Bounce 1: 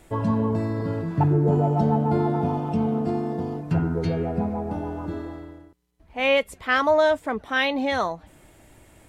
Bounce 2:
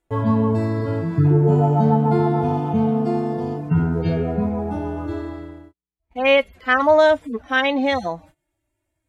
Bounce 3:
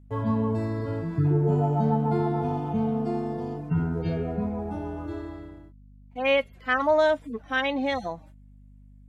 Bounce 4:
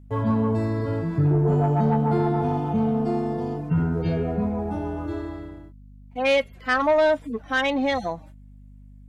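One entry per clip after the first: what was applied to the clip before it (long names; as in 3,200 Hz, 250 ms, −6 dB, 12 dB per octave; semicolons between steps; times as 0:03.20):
harmonic-percussive split with one part muted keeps harmonic; noise gate −48 dBFS, range −27 dB; level +5 dB
mains hum 50 Hz, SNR 24 dB; level −7 dB
soft clipping −17.5 dBFS, distortion −17 dB; level +4.5 dB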